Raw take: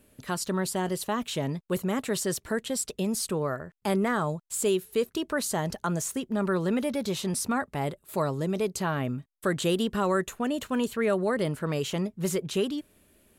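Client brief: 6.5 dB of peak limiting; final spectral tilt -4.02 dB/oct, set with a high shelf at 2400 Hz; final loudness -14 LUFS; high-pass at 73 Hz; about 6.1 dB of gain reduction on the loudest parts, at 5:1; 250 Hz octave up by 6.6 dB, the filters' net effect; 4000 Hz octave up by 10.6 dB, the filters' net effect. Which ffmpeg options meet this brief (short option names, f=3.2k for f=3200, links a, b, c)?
-af "highpass=73,equalizer=f=250:t=o:g=8.5,highshelf=f=2.4k:g=8.5,equalizer=f=4k:t=o:g=6,acompressor=threshold=-23dB:ratio=5,volume=15dB,alimiter=limit=-4.5dB:level=0:latency=1"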